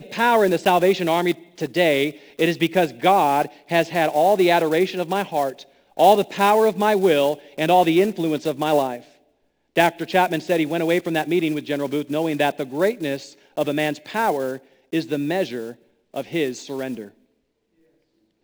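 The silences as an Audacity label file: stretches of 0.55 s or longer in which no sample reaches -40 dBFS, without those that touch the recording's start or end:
9.080000	9.760000	silence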